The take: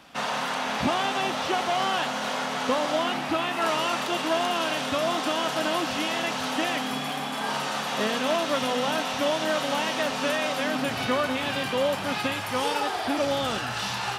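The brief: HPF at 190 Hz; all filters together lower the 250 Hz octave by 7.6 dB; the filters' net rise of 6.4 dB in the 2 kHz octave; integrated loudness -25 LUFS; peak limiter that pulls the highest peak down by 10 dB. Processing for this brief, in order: high-pass 190 Hz; peaking EQ 250 Hz -8 dB; peaking EQ 2 kHz +8.5 dB; trim +3 dB; peak limiter -17.5 dBFS

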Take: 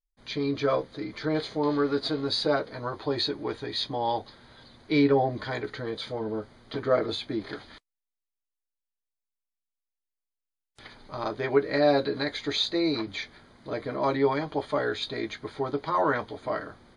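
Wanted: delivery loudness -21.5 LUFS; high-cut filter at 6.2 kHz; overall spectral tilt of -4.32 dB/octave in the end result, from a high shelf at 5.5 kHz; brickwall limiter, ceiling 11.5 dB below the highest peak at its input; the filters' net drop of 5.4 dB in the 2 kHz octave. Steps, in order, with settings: low-pass 6.2 kHz; peaking EQ 2 kHz -6 dB; treble shelf 5.5 kHz -8.5 dB; trim +11.5 dB; peak limiter -10.5 dBFS

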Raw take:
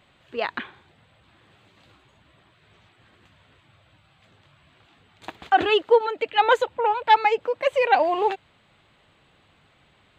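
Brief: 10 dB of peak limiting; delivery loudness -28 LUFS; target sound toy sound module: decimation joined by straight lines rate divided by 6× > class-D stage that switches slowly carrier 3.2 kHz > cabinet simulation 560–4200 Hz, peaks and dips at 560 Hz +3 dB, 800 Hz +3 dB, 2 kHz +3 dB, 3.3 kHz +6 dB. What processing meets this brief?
peak limiter -16 dBFS; decimation joined by straight lines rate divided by 6×; class-D stage that switches slowly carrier 3.2 kHz; cabinet simulation 560–4200 Hz, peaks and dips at 560 Hz +3 dB, 800 Hz +3 dB, 2 kHz +3 dB, 3.3 kHz +6 dB; trim +1.5 dB

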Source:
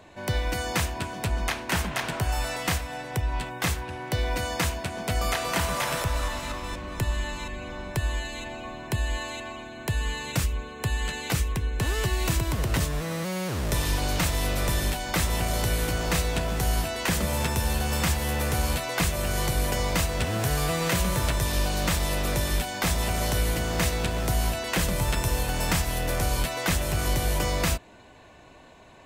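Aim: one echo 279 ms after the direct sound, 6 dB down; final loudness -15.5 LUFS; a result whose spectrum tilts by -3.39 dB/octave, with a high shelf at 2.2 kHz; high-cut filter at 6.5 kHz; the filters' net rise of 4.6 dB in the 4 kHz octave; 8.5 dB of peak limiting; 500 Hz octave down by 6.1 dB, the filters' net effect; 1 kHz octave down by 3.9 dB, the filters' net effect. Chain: low-pass 6.5 kHz; peaking EQ 500 Hz -7 dB; peaking EQ 1 kHz -3.5 dB; treble shelf 2.2 kHz +3.5 dB; peaking EQ 4 kHz +3.5 dB; peak limiter -19 dBFS; delay 279 ms -6 dB; trim +13 dB

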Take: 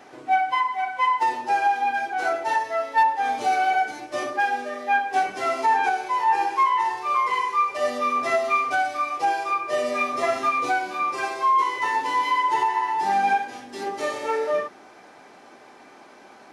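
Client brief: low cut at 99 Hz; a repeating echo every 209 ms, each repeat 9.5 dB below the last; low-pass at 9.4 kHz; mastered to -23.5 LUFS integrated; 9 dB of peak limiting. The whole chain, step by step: high-pass 99 Hz; low-pass 9.4 kHz; peak limiter -19.5 dBFS; feedback delay 209 ms, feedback 33%, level -9.5 dB; trim +3 dB

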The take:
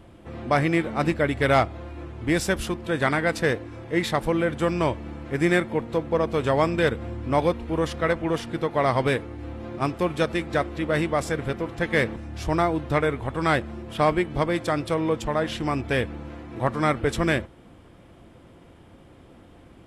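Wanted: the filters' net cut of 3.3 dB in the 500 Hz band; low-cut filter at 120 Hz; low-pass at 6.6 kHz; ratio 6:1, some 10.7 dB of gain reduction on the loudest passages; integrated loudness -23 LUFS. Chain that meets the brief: high-pass 120 Hz; low-pass 6.6 kHz; peaking EQ 500 Hz -4 dB; compression 6:1, threshold -29 dBFS; trim +11.5 dB

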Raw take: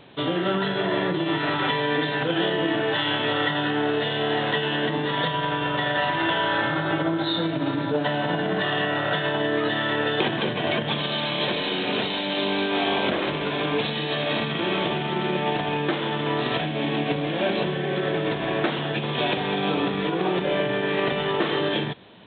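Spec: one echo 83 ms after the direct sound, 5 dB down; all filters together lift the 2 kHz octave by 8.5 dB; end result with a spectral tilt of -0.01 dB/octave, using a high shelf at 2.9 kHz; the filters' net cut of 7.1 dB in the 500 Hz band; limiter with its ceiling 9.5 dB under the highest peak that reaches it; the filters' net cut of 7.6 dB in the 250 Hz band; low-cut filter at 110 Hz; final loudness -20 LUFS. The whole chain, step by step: high-pass 110 Hz; peaking EQ 250 Hz -8 dB; peaking EQ 500 Hz -7.5 dB; peaking EQ 2 kHz +8.5 dB; treble shelf 2.9 kHz +6.5 dB; peak limiter -14 dBFS; delay 83 ms -5 dB; trim +1 dB

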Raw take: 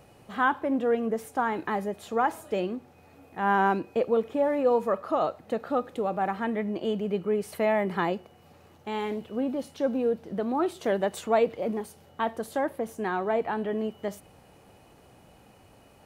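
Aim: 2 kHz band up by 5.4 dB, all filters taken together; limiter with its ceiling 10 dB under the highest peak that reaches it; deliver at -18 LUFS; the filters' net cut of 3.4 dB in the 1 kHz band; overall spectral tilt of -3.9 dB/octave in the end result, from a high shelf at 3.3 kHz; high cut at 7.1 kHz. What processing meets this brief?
low-pass 7.1 kHz; peaking EQ 1 kHz -7 dB; peaking EQ 2 kHz +9 dB; treble shelf 3.3 kHz +4 dB; trim +14 dB; peak limiter -7 dBFS

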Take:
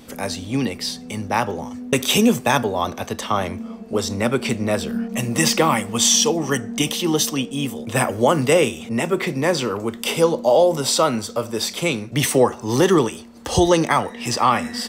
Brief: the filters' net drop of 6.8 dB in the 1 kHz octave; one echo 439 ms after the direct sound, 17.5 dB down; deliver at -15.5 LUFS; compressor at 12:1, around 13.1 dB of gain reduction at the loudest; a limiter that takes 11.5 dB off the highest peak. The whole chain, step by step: peaking EQ 1 kHz -9 dB; compression 12:1, threshold -25 dBFS; peak limiter -20.5 dBFS; delay 439 ms -17.5 dB; trim +15.5 dB

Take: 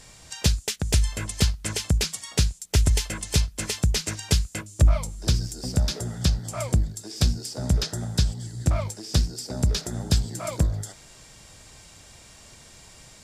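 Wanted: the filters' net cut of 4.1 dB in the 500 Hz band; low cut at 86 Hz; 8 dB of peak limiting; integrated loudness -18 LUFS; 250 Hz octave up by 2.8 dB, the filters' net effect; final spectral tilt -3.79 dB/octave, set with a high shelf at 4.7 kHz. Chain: high-pass 86 Hz; peaking EQ 250 Hz +6 dB; peaking EQ 500 Hz -7.5 dB; treble shelf 4.7 kHz +6.5 dB; trim +10 dB; peak limiter -3 dBFS

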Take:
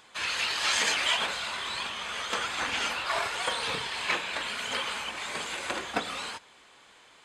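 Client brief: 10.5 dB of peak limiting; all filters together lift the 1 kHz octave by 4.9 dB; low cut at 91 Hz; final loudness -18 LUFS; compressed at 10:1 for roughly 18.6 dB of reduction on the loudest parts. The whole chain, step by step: high-pass 91 Hz; peaking EQ 1 kHz +6 dB; compression 10:1, threshold -41 dBFS; trim +28.5 dB; peak limiter -10 dBFS

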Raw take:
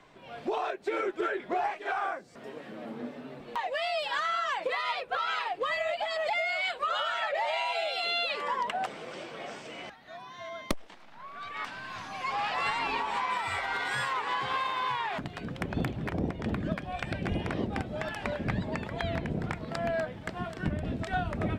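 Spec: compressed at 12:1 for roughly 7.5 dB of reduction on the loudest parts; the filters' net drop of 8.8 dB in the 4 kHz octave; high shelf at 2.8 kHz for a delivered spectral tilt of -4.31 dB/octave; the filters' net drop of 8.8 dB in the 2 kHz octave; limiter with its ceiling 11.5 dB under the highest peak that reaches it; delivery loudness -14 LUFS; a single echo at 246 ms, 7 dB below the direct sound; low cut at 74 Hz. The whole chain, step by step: high-pass 74 Hz; peaking EQ 2 kHz -8.5 dB; treble shelf 2.8 kHz -4.5 dB; peaking EQ 4 kHz -4.5 dB; compression 12:1, threshold -34 dBFS; peak limiter -33 dBFS; delay 246 ms -7 dB; trim +27 dB

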